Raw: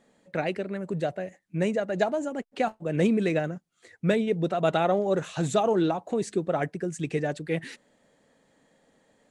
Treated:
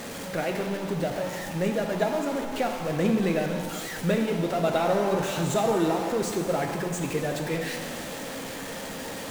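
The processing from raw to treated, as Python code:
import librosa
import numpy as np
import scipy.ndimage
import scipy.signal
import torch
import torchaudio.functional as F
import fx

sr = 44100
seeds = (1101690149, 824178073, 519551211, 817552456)

y = x + 0.5 * 10.0 ** (-28.5 / 20.0) * np.sign(x)
y = fx.rev_shimmer(y, sr, seeds[0], rt60_s=1.7, semitones=7, shimmer_db=-8, drr_db=3.5)
y = F.gain(torch.from_numpy(y), -3.5).numpy()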